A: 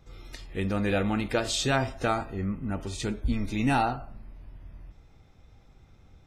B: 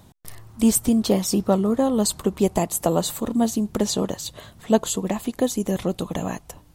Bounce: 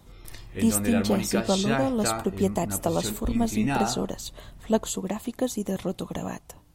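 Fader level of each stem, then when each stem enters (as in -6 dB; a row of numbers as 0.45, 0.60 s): -2.0, -5.0 dB; 0.00, 0.00 s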